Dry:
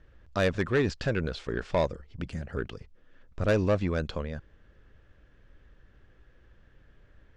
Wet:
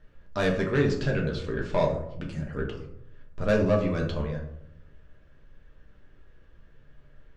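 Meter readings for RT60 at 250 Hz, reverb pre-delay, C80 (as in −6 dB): 0.90 s, 5 ms, 10.0 dB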